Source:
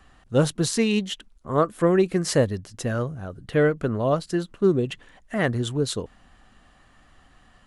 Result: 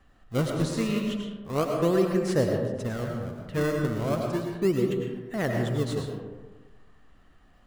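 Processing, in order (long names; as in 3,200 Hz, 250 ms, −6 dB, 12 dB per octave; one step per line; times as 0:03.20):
high-shelf EQ 5,400 Hz −7 dB
in parallel at −5.5 dB: sample-and-hold swept by an LFO 32×, swing 160% 0.34 Hz
on the sum: comb and all-pass reverb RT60 1.3 s, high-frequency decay 0.4×, pre-delay 65 ms, DRR 1.5 dB
level −8.5 dB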